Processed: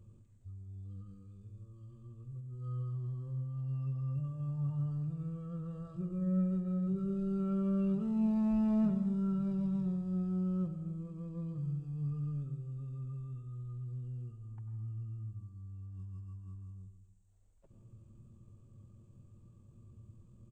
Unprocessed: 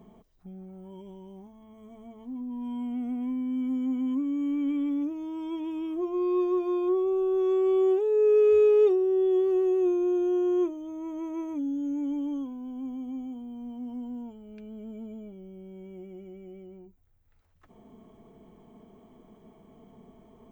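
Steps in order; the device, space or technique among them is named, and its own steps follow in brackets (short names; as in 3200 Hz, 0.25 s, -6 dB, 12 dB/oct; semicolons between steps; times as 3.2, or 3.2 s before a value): monster voice (pitch shift -11.5 st; formant shift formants -4.5 st; low shelf 180 Hz +6 dB; reverb RT60 1.0 s, pre-delay 89 ms, DRR 8 dB); gain -7.5 dB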